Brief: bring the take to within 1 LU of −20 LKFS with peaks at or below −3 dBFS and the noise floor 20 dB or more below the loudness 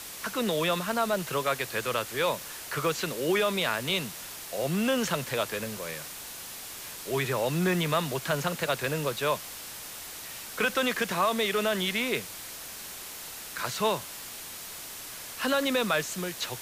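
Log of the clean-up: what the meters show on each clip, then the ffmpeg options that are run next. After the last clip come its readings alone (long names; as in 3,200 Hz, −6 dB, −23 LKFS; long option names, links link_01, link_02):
background noise floor −42 dBFS; target noise floor −50 dBFS; integrated loudness −29.5 LKFS; sample peak −13.5 dBFS; target loudness −20.0 LKFS
→ -af "afftdn=noise_reduction=8:noise_floor=-42"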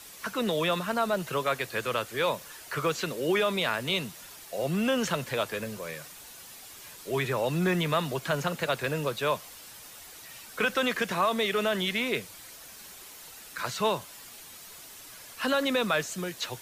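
background noise floor −48 dBFS; target noise floor −49 dBFS
→ -af "afftdn=noise_reduction=6:noise_floor=-48"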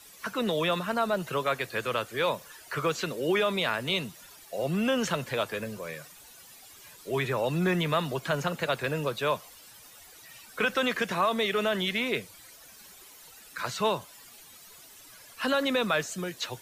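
background noise floor −52 dBFS; integrated loudness −29.0 LKFS; sample peak −14.0 dBFS; target loudness −20.0 LKFS
→ -af "volume=9dB"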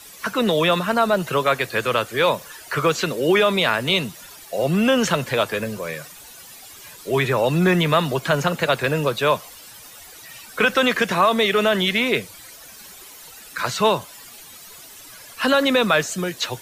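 integrated loudness −20.0 LKFS; sample peak −5.0 dBFS; background noise floor −43 dBFS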